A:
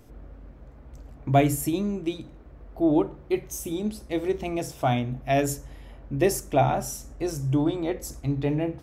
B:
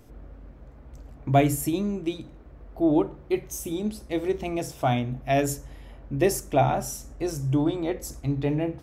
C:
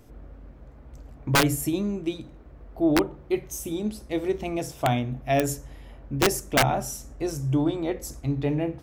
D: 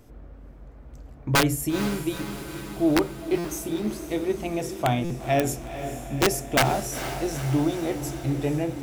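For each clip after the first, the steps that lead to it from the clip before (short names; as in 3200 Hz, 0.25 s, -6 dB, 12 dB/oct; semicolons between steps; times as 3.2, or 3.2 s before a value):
nothing audible
wrapped overs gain 12.5 dB
diffused feedback echo 0.465 s, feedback 65%, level -10.5 dB; stuck buffer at 3.38/5.04, samples 256, times 10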